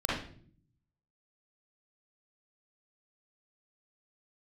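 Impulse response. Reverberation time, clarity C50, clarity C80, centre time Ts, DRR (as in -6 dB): 0.55 s, -2.0 dB, 6.0 dB, 57 ms, -7.0 dB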